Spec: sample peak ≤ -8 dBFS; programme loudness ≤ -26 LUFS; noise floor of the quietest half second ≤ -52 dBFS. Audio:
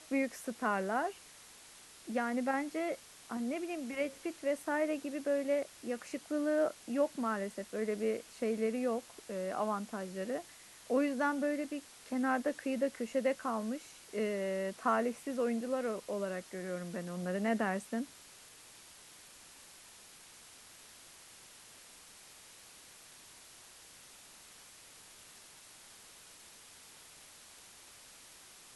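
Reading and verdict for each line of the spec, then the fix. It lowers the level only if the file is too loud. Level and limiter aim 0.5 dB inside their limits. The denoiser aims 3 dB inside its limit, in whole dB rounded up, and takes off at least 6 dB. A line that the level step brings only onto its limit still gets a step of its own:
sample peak -19.0 dBFS: pass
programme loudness -36.0 LUFS: pass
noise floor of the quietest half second -56 dBFS: pass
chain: none needed

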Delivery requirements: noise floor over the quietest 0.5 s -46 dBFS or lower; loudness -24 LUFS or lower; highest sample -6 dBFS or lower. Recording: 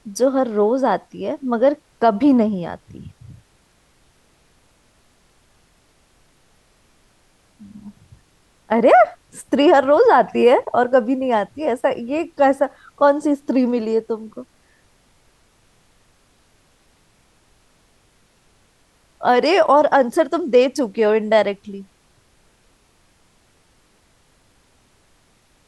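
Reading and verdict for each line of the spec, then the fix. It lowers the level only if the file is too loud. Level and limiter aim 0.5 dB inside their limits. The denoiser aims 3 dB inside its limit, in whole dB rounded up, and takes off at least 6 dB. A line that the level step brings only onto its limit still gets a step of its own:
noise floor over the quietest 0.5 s -58 dBFS: pass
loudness -17.0 LUFS: fail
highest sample -2.5 dBFS: fail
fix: trim -7.5 dB

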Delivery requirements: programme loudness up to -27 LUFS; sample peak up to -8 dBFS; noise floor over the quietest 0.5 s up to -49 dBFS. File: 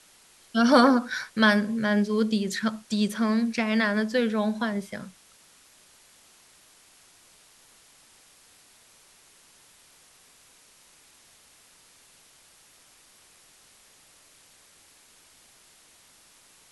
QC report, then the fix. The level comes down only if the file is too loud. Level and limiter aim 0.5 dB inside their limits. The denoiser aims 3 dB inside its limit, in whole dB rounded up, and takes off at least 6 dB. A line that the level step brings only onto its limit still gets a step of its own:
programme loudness -24.0 LUFS: fail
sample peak -6.0 dBFS: fail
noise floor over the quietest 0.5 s -57 dBFS: pass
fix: trim -3.5 dB

